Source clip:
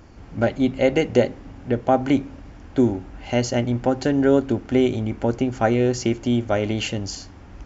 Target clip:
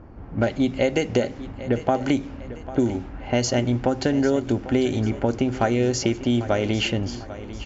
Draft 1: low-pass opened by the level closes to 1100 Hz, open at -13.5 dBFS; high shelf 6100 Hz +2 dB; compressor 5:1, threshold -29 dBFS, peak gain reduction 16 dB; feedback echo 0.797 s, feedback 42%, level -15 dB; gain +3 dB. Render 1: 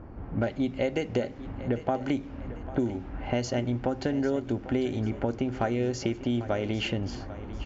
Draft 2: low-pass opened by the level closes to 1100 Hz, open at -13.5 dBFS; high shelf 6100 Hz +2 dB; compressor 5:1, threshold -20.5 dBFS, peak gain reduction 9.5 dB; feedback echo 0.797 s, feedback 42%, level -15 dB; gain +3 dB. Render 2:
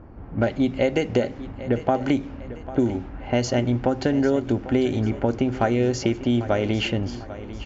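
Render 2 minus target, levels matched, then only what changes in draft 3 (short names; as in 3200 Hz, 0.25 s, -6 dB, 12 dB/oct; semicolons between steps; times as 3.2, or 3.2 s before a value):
8000 Hz band -6.0 dB
change: high shelf 6100 Hz +14 dB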